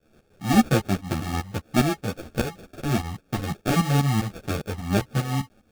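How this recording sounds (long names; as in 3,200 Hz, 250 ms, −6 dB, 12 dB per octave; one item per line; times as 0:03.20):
a quantiser's noise floor 10 bits, dither triangular
tremolo saw up 5 Hz, depth 80%
aliases and images of a low sample rate 1,000 Hz, jitter 0%
a shimmering, thickened sound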